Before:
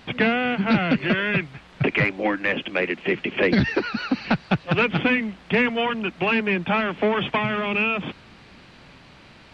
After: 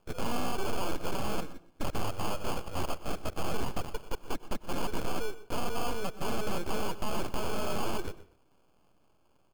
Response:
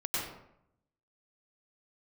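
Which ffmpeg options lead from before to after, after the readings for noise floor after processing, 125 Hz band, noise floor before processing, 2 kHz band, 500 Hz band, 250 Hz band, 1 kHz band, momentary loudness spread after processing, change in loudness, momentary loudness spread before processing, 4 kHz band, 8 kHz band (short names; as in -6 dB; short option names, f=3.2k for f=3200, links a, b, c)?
-66 dBFS, -12.0 dB, -49 dBFS, -20.5 dB, -11.5 dB, -15.5 dB, -8.5 dB, 6 LU, -13.5 dB, 5 LU, -11.0 dB, n/a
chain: -filter_complex "[0:a]bandreject=f=1.6k:w=8.8,afwtdn=0.0501,aresample=11025,aeval=exprs='abs(val(0))':c=same,aresample=44100,acrusher=samples=23:mix=1:aa=0.000001,asoftclip=type=hard:threshold=-22.5dB,aecho=1:1:124:0.133,asplit=2[a][b];[1:a]atrim=start_sample=2205,afade=t=out:st=0.31:d=0.01,atrim=end_sample=14112[c];[b][c]afir=irnorm=-1:irlink=0,volume=-23dB[d];[a][d]amix=inputs=2:normalize=0,volume=-2dB"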